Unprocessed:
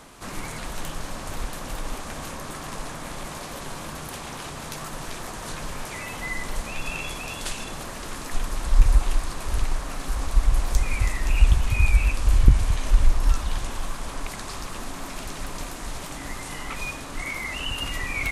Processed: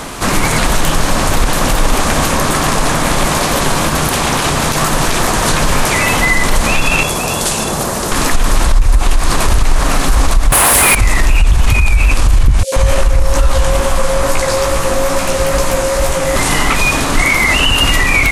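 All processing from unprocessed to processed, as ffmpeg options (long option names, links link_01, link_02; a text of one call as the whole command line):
ffmpeg -i in.wav -filter_complex "[0:a]asettb=1/sr,asplit=3[link_01][link_02][link_03];[link_01]atrim=end=7.034[link_04];[link_02]atrim=start=7.03:end=8.12,asetpts=PTS-STARTPTS,afade=type=in:duration=0.004:curve=qsin,afade=type=out:start_time=1.086:duration=0.004:curve=qsin,highpass=frequency=120:poles=1,equalizer=frequency=2400:width=0.64:gain=-9,bandreject=frequency=280:width=5.6[link_05];[link_03]atrim=start=8.116[link_06];[link_04][link_05]acrossfade=duration=0.004:curve1=hsin:curve2=qsin[link_07];[link_07][link_06]acrossfade=duration=0.004:curve1=qsin:curve2=hsin,asettb=1/sr,asplit=3[link_08][link_09][link_10];[link_08]atrim=end=10.524[link_11];[link_09]atrim=start=10.52:end=10.95,asetpts=PTS-STARTPTS,afade=type=in:duration=0.004:curve=qsin,afade=type=out:start_time=0.426:duration=0.004:curve=qsin,highpass=57,highshelf=frequency=7800:width_type=q:width=3:gain=12.5,asplit=2[link_12][link_13];[link_13]highpass=frequency=720:poles=1,volume=35dB,asoftclip=type=tanh:threshold=-2.5dB[link_14];[link_12][link_14]amix=inputs=2:normalize=0,lowpass=frequency=3600:poles=1,volume=-6dB[link_15];[link_10]atrim=start=10.946[link_16];[link_11][link_15]acrossfade=duration=0.004:curve1=hsin:curve2=qsin[link_17];[link_17][link_16]acrossfade=duration=0.004:curve1=qsin:curve2=hsin,asettb=1/sr,asplit=3[link_18][link_19][link_20];[link_18]atrim=end=12.634[link_21];[link_19]atrim=start=12.63:end=16.36,asetpts=PTS-STARTPTS,afade=type=in:duration=0.004:curve=qsin,afade=type=out:start_time=3.726:duration=0.004:curve=qsin,acrossover=split=230|3700[link_22][link_23][link_24];[link_23]adelay=90[link_25];[link_22]adelay=130[link_26];[link_26][link_25][link_24]amix=inputs=3:normalize=0,atrim=end_sample=164493,aeval=exprs='val(0)+0.02*sin(2*PI*540*n/s)':channel_layout=same,flanger=delay=15.5:depth=5.3:speed=2.3[link_27];[link_20]atrim=start=16.356[link_28];[link_21][link_27]acrossfade=duration=0.004:curve1=hsin:curve2=qsin[link_29];[link_29][link_28]acrossfade=duration=0.004:curve1=qsin:curve2=hsin,acompressor=threshold=-19dB:ratio=6,alimiter=level_in=23dB:limit=-1dB:release=50:level=0:latency=1,volume=-1dB" out.wav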